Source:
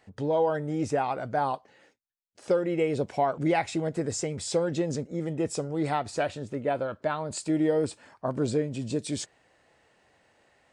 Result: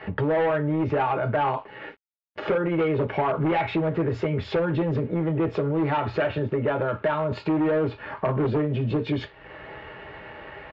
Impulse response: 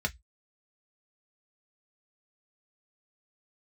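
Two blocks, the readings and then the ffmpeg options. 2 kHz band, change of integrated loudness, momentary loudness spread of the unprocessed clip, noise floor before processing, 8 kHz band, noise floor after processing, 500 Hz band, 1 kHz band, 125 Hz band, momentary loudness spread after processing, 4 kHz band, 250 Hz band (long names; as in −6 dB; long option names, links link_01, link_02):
+6.5 dB, +4.0 dB, 7 LU, −66 dBFS, below −25 dB, −50 dBFS, +3.0 dB, +3.5 dB, +7.5 dB, 17 LU, 0.0 dB, +4.0 dB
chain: -filter_complex "[1:a]atrim=start_sample=2205,asetrate=27783,aresample=44100[link_01];[0:a][link_01]afir=irnorm=-1:irlink=0,asplit=2[link_02][link_03];[link_03]acontrast=85,volume=0.5dB[link_04];[link_02][link_04]amix=inputs=2:normalize=0,asoftclip=type=hard:threshold=-5dB,alimiter=limit=-9dB:level=0:latency=1:release=40,lowshelf=frequency=120:gain=-6,acompressor=threshold=-35dB:ratio=2.5,aresample=16000,aeval=exprs='sgn(val(0))*max(abs(val(0))-0.00133,0)':channel_layout=same,aresample=44100,lowpass=frequency=3000:width=0.5412,lowpass=frequency=3000:width=1.3066,volume=5.5dB"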